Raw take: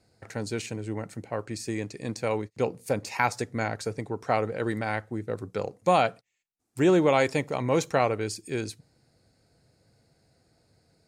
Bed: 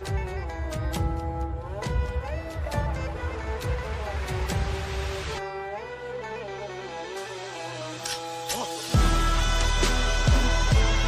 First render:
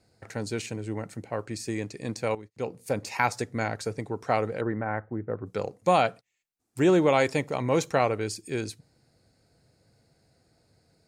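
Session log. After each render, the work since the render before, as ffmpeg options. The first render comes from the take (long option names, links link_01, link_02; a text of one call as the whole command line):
ffmpeg -i in.wav -filter_complex "[0:a]asplit=3[link_01][link_02][link_03];[link_01]afade=type=out:start_time=4.6:duration=0.02[link_04];[link_02]lowpass=frequency=1700:width=0.5412,lowpass=frequency=1700:width=1.3066,afade=type=in:start_time=4.6:duration=0.02,afade=type=out:start_time=5.45:duration=0.02[link_05];[link_03]afade=type=in:start_time=5.45:duration=0.02[link_06];[link_04][link_05][link_06]amix=inputs=3:normalize=0,asplit=2[link_07][link_08];[link_07]atrim=end=2.35,asetpts=PTS-STARTPTS,afade=type=out:start_time=2.346:duration=0.004:curve=hsin:silence=0.211349[link_09];[link_08]atrim=start=2.35,asetpts=PTS-STARTPTS,afade=type=in:duration=0.68:silence=0.211349[link_10];[link_09][link_10]concat=n=2:v=0:a=1" out.wav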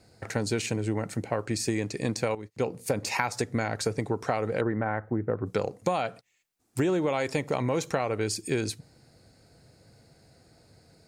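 ffmpeg -i in.wav -filter_complex "[0:a]asplit=2[link_01][link_02];[link_02]alimiter=limit=-17.5dB:level=0:latency=1:release=85,volume=2.5dB[link_03];[link_01][link_03]amix=inputs=2:normalize=0,acompressor=threshold=-23dB:ratio=12" out.wav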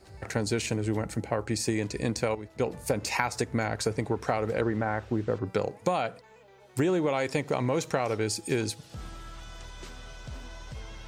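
ffmpeg -i in.wav -i bed.wav -filter_complex "[1:a]volume=-20.5dB[link_01];[0:a][link_01]amix=inputs=2:normalize=0" out.wav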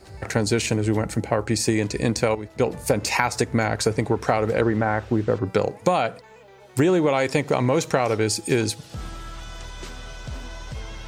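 ffmpeg -i in.wav -af "volume=7dB,alimiter=limit=-3dB:level=0:latency=1" out.wav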